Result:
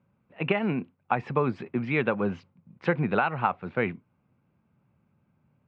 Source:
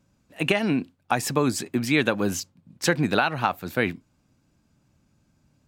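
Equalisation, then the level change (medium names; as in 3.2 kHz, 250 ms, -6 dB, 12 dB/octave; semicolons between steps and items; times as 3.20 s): cabinet simulation 110–2300 Hz, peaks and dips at 290 Hz -10 dB, 650 Hz -4 dB, 1.7 kHz -7 dB; 0.0 dB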